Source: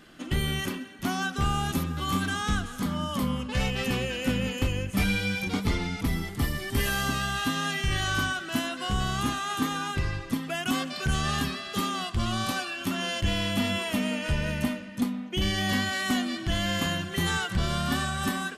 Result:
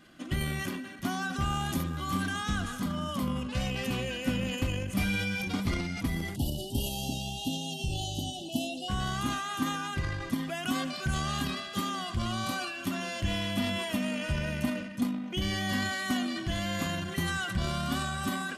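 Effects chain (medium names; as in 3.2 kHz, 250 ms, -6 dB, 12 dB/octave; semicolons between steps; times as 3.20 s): comb of notches 440 Hz; transient shaper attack +2 dB, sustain +8 dB; spectral selection erased 6.36–8.89 s, 950–2600 Hz; trim -4 dB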